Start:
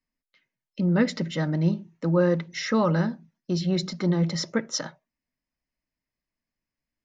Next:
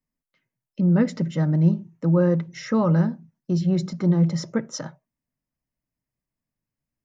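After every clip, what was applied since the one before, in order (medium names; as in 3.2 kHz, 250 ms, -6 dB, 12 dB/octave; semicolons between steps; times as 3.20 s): graphic EQ 125/2000/4000 Hz +9/-4/-9 dB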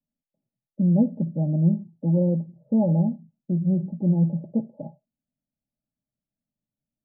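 rippled Chebyshev low-pass 860 Hz, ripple 9 dB; trim +1.5 dB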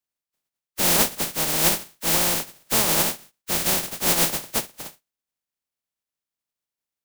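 spectral contrast reduction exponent 0.11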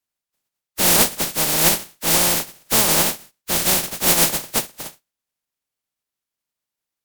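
trim +4 dB; MP3 80 kbps 44.1 kHz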